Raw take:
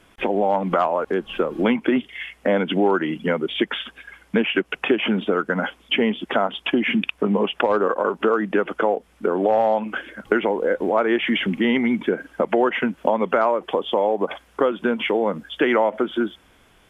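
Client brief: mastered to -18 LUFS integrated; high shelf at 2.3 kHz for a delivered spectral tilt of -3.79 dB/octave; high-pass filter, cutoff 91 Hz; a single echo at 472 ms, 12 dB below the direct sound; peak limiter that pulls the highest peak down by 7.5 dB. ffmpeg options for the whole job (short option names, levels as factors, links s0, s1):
-af "highpass=91,highshelf=f=2300:g=-5,alimiter=limit=0.266:level=0:latency=1,aecho=1:1:472:0.251,volume=1.88"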